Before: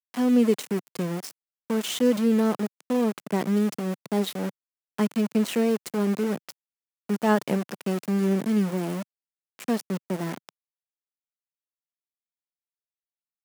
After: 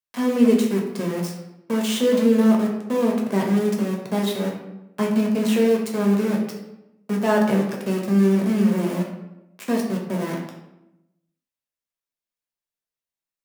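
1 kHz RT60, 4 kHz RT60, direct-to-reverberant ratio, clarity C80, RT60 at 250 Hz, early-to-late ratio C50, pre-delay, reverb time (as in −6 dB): 0.85 s, 0.60 s, −1.5 dB, 7.0 dB, 1.1 s, 4.5 dB, 5 ms, 0.90 s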